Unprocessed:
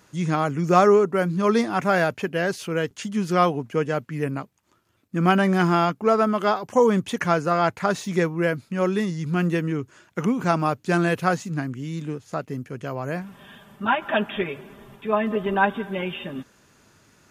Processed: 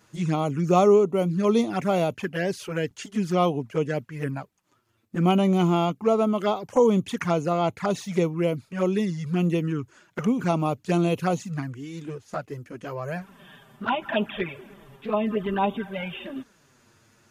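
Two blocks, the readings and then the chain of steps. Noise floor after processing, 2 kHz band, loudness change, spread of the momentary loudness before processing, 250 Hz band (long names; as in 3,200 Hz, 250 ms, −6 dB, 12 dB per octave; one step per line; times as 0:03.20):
−64 dBFS, −8.0 dB, −2.0 dB, 12 LU, −0.5 dB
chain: flanger swept by the level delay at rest 9.3 ms, full sweep at −18.5 dBFS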